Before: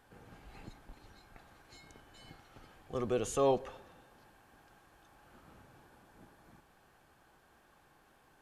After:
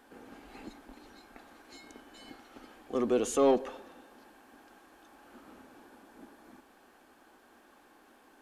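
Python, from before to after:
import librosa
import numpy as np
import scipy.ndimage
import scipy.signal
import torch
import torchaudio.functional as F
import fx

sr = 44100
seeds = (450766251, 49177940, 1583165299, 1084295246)

p1 = fx.low_shelf_res(x, sr, hz=190.0, db=-9.5, q=3.0)
p2 = 10.0 ** (-30.0 / 20.0) * np.tanh(p1 / 10.0 ** (-30.0 / 20.0))
y = p1 + (p2 * 10.0 ** (-3.5 / 20.0))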